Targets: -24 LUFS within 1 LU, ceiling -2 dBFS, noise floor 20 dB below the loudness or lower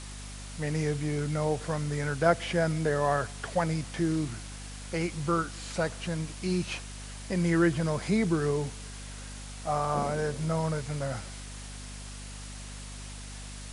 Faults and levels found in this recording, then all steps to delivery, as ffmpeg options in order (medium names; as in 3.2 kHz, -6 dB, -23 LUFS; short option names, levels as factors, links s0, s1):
hum 50 Hz; highest harmonic 250 Hz; hum level -41 dBFS; noise floor -42 dBFS; noise floor target -50 dBFS; loudness -30.0 LUFS; peak level -9.5 dBFS; loudness target -24.0 LUFS
-> -af "bandreject=f=50:t=h:w=6,bandreject=f=100:t=h:w=6,bandreject=f=150:t=h:w=6,bandreject=f=200:t=h:w=6,bandreject=f=250:t=h:w=6"
-af "afftdn=nr=8:nf=-42"
-af "volume=2"